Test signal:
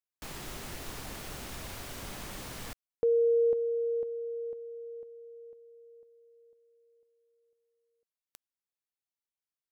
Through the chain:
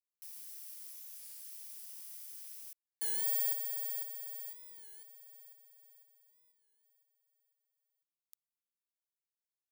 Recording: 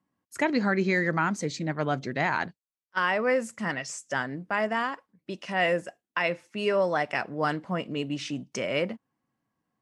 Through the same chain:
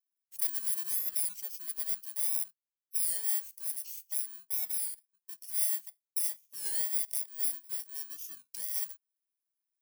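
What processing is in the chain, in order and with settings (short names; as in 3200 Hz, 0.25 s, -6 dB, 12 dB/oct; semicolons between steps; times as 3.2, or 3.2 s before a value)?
FFT order left unsorted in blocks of 32 samples; differentiator; record warp 33 1/3 rpm, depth 160 cents; gain -7.5 dB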